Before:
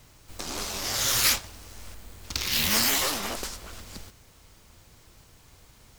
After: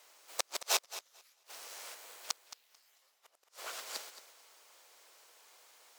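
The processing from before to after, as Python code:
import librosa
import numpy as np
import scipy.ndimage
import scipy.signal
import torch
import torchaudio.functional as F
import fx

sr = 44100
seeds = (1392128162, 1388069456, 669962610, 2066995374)

p1 = scipy.signal.sosfilt(scipy.signal.butter(4, 490.0, 'highpass', fs=sr, output='sos'), x)
p2 = fx.cheby_harmonics(p1, sr, harmonics=(2, 3, 4, 6), levels_db=(-7, -42, -14, -33), full_scale_db=-7.0)
p3 = fx.gate_flip(p2, sr, shuts_db=-21.0, range_db=-42)
p4 = p3 + fx.echo_feedback(p3, sr, ms=221, feedback_pct=26, wet_db=-9.5, dry=0)
p5 = fx.upward_expand(p4, sr, threshold_db=-57.0, expansion=1.5)
y = F.gain(torch.from_numpy(p5), 8.0).numpy()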